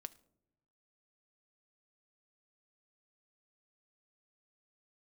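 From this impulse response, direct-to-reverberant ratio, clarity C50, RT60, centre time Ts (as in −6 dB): 12.0 dB, 20.0 dB, non-exponential decay, 3 ms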